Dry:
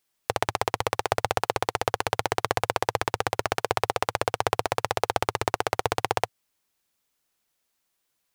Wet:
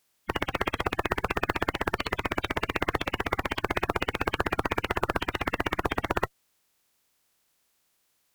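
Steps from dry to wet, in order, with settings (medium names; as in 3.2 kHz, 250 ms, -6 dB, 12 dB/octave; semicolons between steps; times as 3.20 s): coarse spectral quantiser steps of 30 dB; peak limiter -10 dBFS, peak gain reduction 6.5 dB; one-sided clip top -29 dBFS; trim +5.5 dB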